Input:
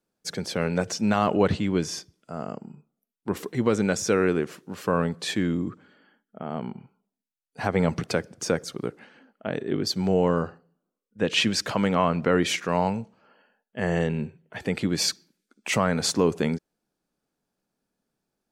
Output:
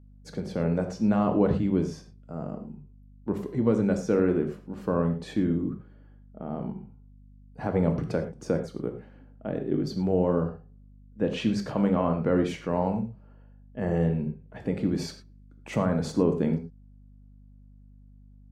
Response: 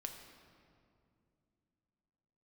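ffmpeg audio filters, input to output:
-filter_complex "[0:a]tiltshelf=f=1200:g=9[s0];[1:a]atrim=start_sample=2205,afade=t=out:st=0.18:d=0.01,atrim=end_sample=8379,asetrate=48510,aresample=44100[s1];[s0][s1]afir=irnorm=-1:irlink=0,aeval=exprs='val(0)+0.00447*(sin(2*PI*50*n/s)+sin(2*PI*2*50*n/s)/2+sin(2*PI*3*50*n/s)/3+sin(2*PI*4*50*n/s)/4+sin(2*PI*5*50*n/s)/5)':c=same,volume=0.668"

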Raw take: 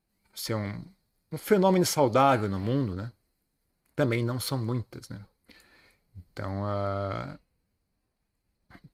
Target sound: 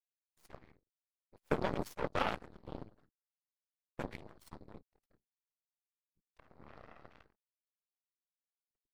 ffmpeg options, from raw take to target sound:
-af "anlmdn=0.0158,afftfilt=real='hypot(re,im)*cos(2*PI*random(0))':imag='hypot(re,im)*sin(2*PI*random(1))':win_size=512:overlap=0.75,aeval=exprs='0.224*(cos(1*acos(clip(val(0)/0.224,-1,1)))-cos(1*PI/2))+0.0562*(cos(3*acos(clip(val(0)/0.224,-1,1)))-cos(3*PI/2))+0.0141*(cos(4*acos(clip(val(0)/0.224,-1,1)))-cos(4*PI/2))+0.00794*(cos(7*acos(clip(val(0)/0.224,-1,1)))-cos(7*PI/2))+0.00141*(cos(8*acos(clip(val(0)/0.224,-1,1)))-cos(8*PI/2))':c=same,volume=1.12"

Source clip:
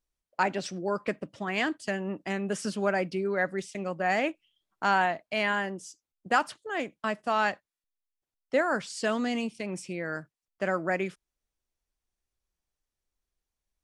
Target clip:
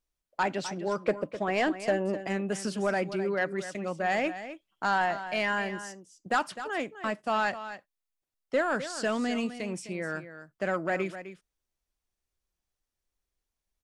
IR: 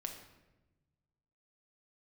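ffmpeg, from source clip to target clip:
-filter_complex "[0:a]asettb=1/sr,asplit=3[s0][s1][s2];[s0]atrim=end=1.024[s3];[s1]atrim=start=1.02:end=2.27,asetpts=PTS-STARTPTS,afade=t=in:d=0.004:c=qsin,afade=t=out:st=1.246:d=0.004:c=qsin,equalizer=f=550:t=o:w=1.1:g=10[s4];[s2]atrim=start=2.266[s5];[s3][s4]acrossfade=d=0.004:c1=hsin:c2=qsin[s6];[s6][s5]acrossfade=d=0.004:c1=qsin:c2=hsin,asoftclip=type=tanh:threshold=0.141,asplit=2[s7][s8];[s8]aecho=0:1:256:0.251[s9];[s7][s9]amix=inputs=2:normalize=0"

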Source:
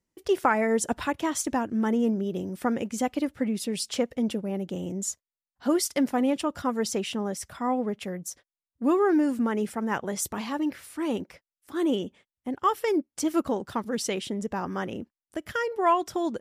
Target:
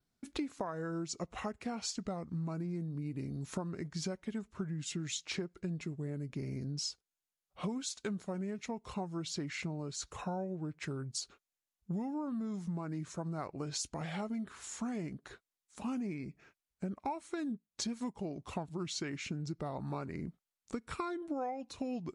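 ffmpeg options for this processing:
-af "adynamicequalizer=threshold=0.00178:dfrequency=9100:dqfactor=4.8:tfrequency=9100:tqfactor=4.8:attack=5:release=100:ratio=0.375:range=2.5:mode=boostabove:tftype=bell,acompressor=threshold=0.0178:ratio=12,asetrate=32667,aresample=44100"

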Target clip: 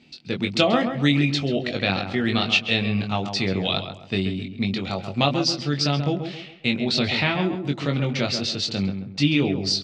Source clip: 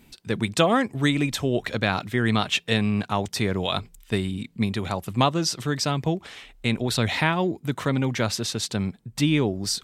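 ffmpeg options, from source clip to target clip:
-filter_complex "[0:a]highpass=110,equalizer=f=420:t=q:w=4:g=-3,equalizer=f=1000:t=q:w=4:g=-9,equalizer=f=1600:t=q:w=4:g=-6,equalizer=f=2700:t=q:w=4:g=5,equalizer=f=4500:t=q:w=4:g=7,lowpass=f=5600:w=0.5412,lowpass=f=5600:w=1.3066,asplit=2[s0][s1];[s1]adelay=21,volume=0.562[s2];[s0][s2]amix=inputs=2:normalize=0,asplit=2[s3][s4];[s4]adelay=134,lowpass=f=1800:p=1,volume=0.447,asplit=2[s5][s6];[s6]adelay=134,lowpass=f=1800:p=1,volume=0.36,asplit=2[s7][s8];[s8]adelay=134,lowpass=f=1800:p=1,volume=0.36,asplit=2[s9][s10];[s10]adelay=134,lowpass=f=1800:p=1,volume=0.36[s11];[s3][s5][s7][s9][s11]amix=inputs=5:normalize=0"

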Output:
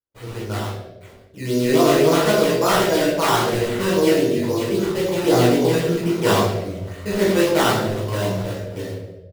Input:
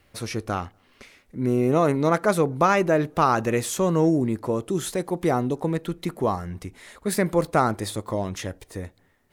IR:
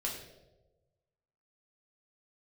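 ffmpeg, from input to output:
-filter_complex "[0:a]highpass=79,highshelf=f=3500:g=-6,aecho=1:1:41|88:0.668|0.631,dynaudnorm=f=610:g=3:m=3.76,acrusher=samples=14:mix=1:aa=0.000001:lfo=1:lforange=14:lforate=3.7,flanger=delay=16.5:depth=4.8:speed=0.36,agate=range=0.0224:threshold=0.00501:ratio=3:detection=peak[s0];[1:a]atrim=start_sample=2205[s1];[s0][s1]afir=irnorm=-1:irlink=0,volume=0.841"

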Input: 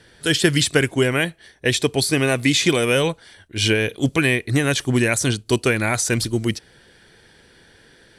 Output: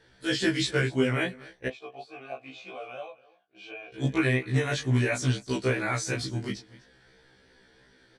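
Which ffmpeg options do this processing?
-filter_complex "[0:a]lowpass=5900,equalizer=f=2800:t=o:w=0.43:g=-4.5,aecho=1:1:247:0.0944,flanger=delay=19.5:depth=5.7:speed=2.9,asettb=1/sr,asplit=3[s0][s1][s2];[s0]atrim=end=1.684[s3];[s1]atrim=start=1.68:end=3.94,asetpts=PTS-STARTPTS,afade=t=in:d=0.004:c=qsin,afade=t=out:st=2.256:d=0.004:c=qsin,asplit=3[s4][s5][s6];[s4]bandpass=f=730:t=q:w=8,volume=1[s7];[s5]bandpass=f=1090:t=q:w=8,volume=0.501[s8];[s6]bandpass=f=2440:t=q:w=8,volume=0.355[s9];[s7][s8][s9]amix=inputs=3:normalize=0[s10];[s2]atrim=start=3.936[s11];[s3][s10]acrossfade=d=0.004:c1=hsin:c2=qsin[s12];[s12][s11]acrossfade=d=0.004:c1=qsin:c2=hsin,afftfilt=real='re*1.73*eq(mod(b,3),0)':imag='im*1.73*eq(mod(b,3),0)':win_size=2048:overlap=0.75,volume=0.794"

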